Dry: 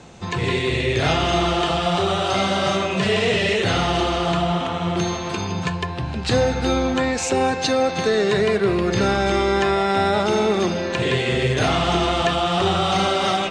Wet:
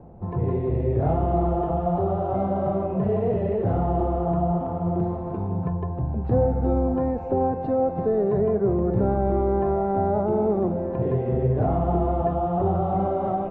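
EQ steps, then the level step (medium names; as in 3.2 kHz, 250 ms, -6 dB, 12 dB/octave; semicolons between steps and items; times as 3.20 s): resonant low-pass 760 Hz, resonance Q 1.7; tilt EQ -3 dB/octave; -9.0 dB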